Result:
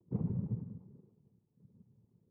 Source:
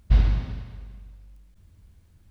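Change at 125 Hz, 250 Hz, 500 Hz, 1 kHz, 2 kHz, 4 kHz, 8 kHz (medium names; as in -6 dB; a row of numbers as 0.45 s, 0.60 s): -11.5 dB, -1.0 dB, -5.5 dB, under -15 dB, under -35 dB, under -35 dB, no reading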